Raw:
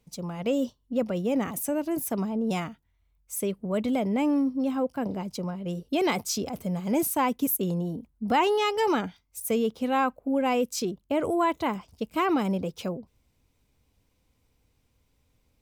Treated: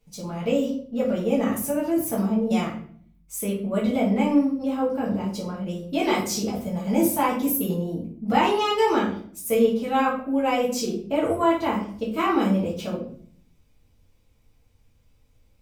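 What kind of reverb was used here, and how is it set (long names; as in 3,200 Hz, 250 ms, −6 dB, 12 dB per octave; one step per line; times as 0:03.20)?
rectangular room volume 62 cubic metres, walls mixed, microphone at 1.5 metres
level −4 dB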